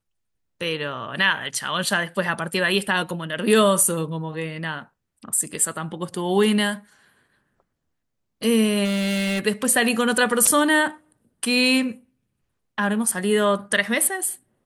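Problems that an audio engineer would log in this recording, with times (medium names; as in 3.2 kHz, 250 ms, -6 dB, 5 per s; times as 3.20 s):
8.84–9.40 s: clipped -21 dBFS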